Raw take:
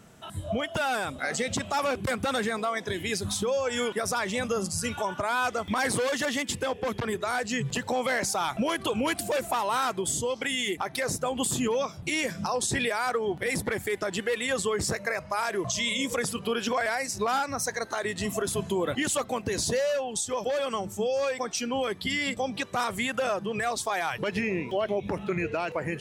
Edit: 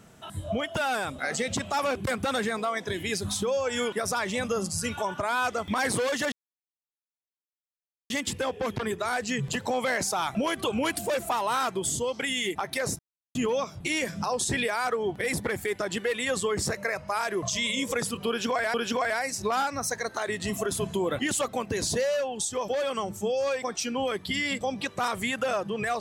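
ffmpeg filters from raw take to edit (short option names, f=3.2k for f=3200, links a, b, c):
-filter_complex "[0:a]asplit=5[a][b][c][d][e];[a]atrim=end=6.32,asetpts=PTS-STARTPTS,afade=t=out:st=6.316:d=0.004:c=hsin,apad=pad_dur=1.78[f];[b]atrim=start=6.32:end=11.21,asetpts=PTS-STARTPTS,afade=t=in:d=0.004:c=hsin,afade=t=out:st=4.886:d=0.004:c=hsin[g];[c]atrim=start=11.21:end=11.57,asetpts=PTS-STARTPTS,volume=0[h];[d]atrim=start=11.57:end=16.962,asetpts=PTS-STARTPTS,afade=t=in:d=0.004:c=hsin[i];[e]atrim=start=16.498[j];[f][g][h][i]concat=n=4:v=0:a=1[k];[k][j]acrossfade=d=0.004:c1=hsin:c2=hsin"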